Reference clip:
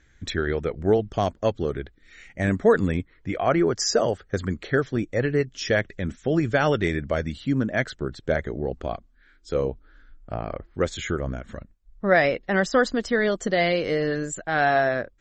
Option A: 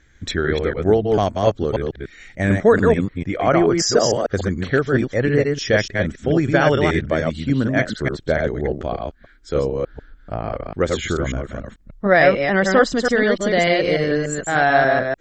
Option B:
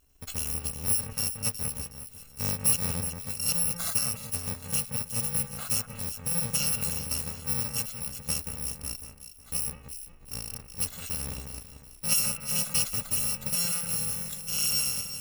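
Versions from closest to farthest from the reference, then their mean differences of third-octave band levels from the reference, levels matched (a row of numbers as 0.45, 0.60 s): A, B; 4.0, 17.5 dB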